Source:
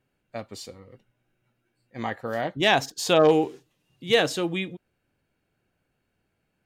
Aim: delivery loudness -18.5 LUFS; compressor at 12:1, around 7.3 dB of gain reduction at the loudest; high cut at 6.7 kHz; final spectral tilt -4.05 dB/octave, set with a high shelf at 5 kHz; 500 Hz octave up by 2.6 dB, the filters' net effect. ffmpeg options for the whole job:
-af "lowpass=6700,equalizer=f=500:t=o:g=3,highshelf=f=5000:g=3,acompressor=threshold=0.126:ratio=12,volume=2.66"

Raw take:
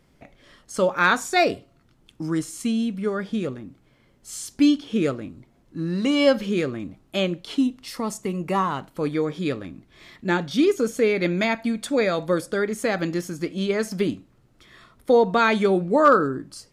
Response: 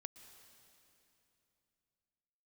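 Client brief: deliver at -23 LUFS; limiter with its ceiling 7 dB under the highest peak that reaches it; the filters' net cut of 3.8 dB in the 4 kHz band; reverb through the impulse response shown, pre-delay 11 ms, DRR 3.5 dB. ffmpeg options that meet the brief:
-filter_complex "[0:a]equalizer=f=4000:t=o:g=-5,alimiter=limit=0.211:level=0:latency=1,asplit=2[s0][s1];[1:a]atrim=start_sample=2205,adelay=11[s2];[s1][s2]afir=irnorm=-1:irlink=0,volume=1.26[s3];[s0][s3]amix=inputs=2:normalize=0,volume=1.06"

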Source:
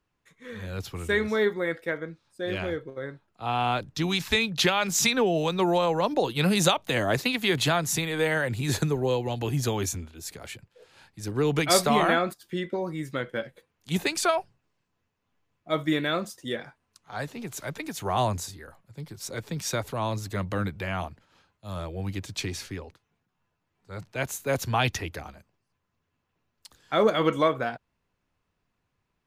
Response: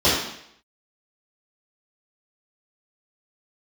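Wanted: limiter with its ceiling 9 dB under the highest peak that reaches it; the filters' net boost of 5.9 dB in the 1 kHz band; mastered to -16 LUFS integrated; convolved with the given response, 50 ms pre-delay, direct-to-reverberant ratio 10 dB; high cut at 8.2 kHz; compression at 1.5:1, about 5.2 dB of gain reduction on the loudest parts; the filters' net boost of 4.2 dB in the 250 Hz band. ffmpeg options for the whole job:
-filter_complex "[0:a]lowpass=8200,equalizer=f=250:t=o:g=5.5,equalizer=f=1000:t=o:g=7.5,acompressor=threshold=0.0447:ratio=1.5,alimiter=limit=0.126:level=0:latency=1,asplit=2[s0][s1];[1:a]atrim=start_sample=2205,adelay=50[s2];[s1][s2]afir=irnorm=-1:irlink=0,volume=0.0299[s3];[s0][s3]amix=inputs=2:normalize=0,volume=4.73"

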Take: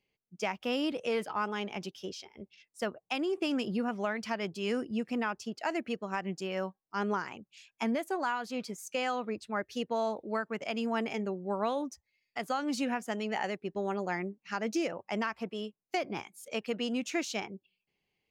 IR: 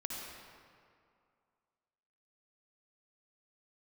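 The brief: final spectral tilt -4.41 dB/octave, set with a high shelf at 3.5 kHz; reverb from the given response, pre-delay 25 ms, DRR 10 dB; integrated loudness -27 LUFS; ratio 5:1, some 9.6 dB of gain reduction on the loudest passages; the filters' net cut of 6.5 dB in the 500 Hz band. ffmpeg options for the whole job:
-filter_complex "[0:a]equalizer=f=500:t=o:g=-8.5,highshelf=f=3500:g=-5,acompressor=threshold=0.00891:ratio=5,asplit=2[s0][s1];[1:a]atrim=start_sample=2205,adelay=25[s2];[s1][s2]afir=irnorm=-1:irlink=0,volume=0.282[s3];[s0][s3]amix=inputs=2:normalize=0,volume=7.5"

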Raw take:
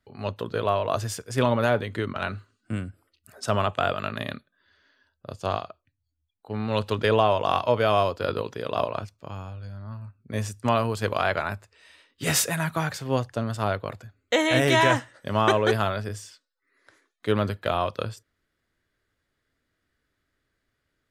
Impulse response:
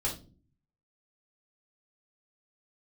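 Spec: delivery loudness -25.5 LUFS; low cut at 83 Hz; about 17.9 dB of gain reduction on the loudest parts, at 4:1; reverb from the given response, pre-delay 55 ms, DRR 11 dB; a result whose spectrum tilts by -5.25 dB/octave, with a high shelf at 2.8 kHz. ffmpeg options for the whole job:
-filter_complex "[0:a]highpass=83,highshelf=f=2800:g=-3.5,acompressor=threshold=0.0112:ratio=4,asplit=2[s0][s1];[1:a]atrim=start_sample=2205,adelay=55[s2];[s1][s2]afir=irnorm=-1:irlink=0,volume=0.168[s3];[s0][s3]amix=inputs=2:normalize=0,volume=5.96"

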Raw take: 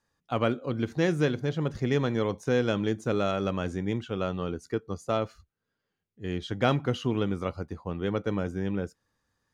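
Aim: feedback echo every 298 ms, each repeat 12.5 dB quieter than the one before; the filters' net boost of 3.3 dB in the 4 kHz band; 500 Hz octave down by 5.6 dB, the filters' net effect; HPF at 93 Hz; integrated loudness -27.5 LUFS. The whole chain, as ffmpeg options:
-af "highpass=93,equalizer=f=500:t=o:g=-7,equalizer=f=4000:t=o:g=4.5,aecho=1:1:298|596|894:0.237|0.0569|0.0137,volume=1.58"

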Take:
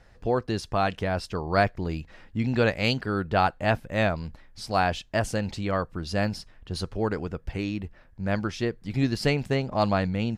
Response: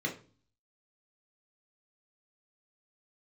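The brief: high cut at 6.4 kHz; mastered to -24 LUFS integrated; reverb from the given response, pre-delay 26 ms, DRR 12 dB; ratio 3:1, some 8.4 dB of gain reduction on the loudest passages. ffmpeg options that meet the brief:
-filter_complex "[0:a]lowpass=6400,acompressor=threshold=0.0355:ratio=3,asplit=2[s0][s1];[1:a]atrim=start_sample=2205,adelay=26[s2];[s1][s2]afir=irnorm=-1:irlink=0,volume=0.141[s3];[s0][s3]amix=inputs=2:normalize=0,volume=2.82"

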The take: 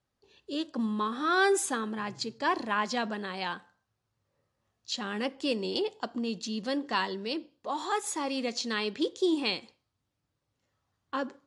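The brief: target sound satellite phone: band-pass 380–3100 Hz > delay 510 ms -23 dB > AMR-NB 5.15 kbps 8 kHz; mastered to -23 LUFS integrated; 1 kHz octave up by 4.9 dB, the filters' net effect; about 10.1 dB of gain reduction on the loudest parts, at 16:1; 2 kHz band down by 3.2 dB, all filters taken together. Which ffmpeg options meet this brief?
-af "equalizer=f=1000:t=o:g=8,equalizer=f=2000:t=o:g=-8,acompressor=threshold=0.0447:ratio=16,highpass=380,lowpass=3100,aecho=1:1:510:0.0708,volume=5.01" -ar 8000 -c:a libopencore_amrnb -b:a 5150

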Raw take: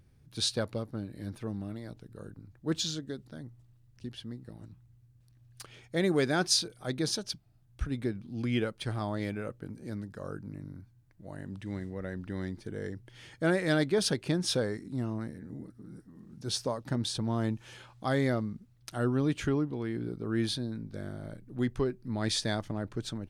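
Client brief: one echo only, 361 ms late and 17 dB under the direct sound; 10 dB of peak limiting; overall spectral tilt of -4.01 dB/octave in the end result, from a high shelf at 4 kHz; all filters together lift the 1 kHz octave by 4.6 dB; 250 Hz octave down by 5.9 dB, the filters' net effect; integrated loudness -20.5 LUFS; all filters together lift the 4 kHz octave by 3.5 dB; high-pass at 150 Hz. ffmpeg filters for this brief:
-af "highpass=150,equalizer=f=250:t=o:g=-7.5,equalizer=f=1000:t=o:g=7,highshelf=f=4000:g=-7.5,equalizer=f=4000:t=o:g=8.5,alimiter=limit=0.075:level=0:latency=1,aecho=1:1:361:0.141,volume=6.31"

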